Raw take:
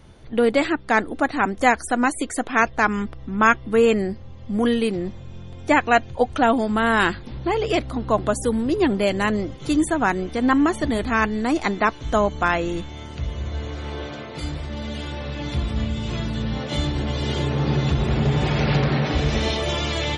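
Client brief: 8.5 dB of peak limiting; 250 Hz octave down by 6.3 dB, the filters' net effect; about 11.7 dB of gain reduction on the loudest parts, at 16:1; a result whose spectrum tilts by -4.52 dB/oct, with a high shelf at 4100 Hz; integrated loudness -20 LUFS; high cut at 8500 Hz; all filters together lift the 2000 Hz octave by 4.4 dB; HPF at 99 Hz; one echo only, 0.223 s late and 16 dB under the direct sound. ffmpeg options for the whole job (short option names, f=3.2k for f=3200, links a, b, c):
-af "highpass=99,lowpass=8.5k,equalizer=f=250:t=o:g=-8,equalizer=f=2k:t=o:g=5,highshelf=f=4.1k:g=3.5,acompressor=threshold=-20dB:ratio=16,alimiter=limit=-15.5dB:level=0:latency=1,aecho=1:1:223:0.158,volume=8dB"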